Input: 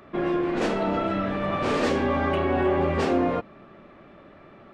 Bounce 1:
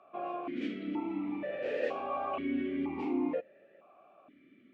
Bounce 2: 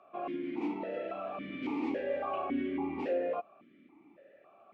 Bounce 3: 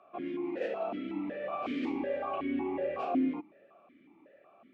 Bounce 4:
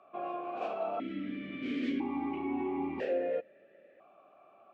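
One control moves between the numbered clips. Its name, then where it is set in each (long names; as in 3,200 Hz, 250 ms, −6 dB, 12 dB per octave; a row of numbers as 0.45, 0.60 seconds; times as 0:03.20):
formant filter that steps through the vowels, speed: 2.1, 3.6, 5.4, 1 Hertz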